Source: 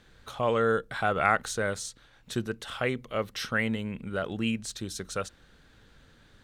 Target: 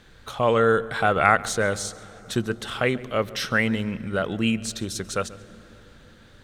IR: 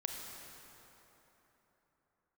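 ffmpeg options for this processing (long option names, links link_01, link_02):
-filter_complex "[0:a]asplit=2[link_01][link_02];[1:a]atrim=start_sample=2205,lowshelf=frequency=430:gain=9,adelay=138[link_03];[link_02][link_03]afir=irnorm=-1:irlink=0,volume=-20.5dB[link_04];[link_01][link_04]amix=inputs=2:normalize=0,volume=6dB"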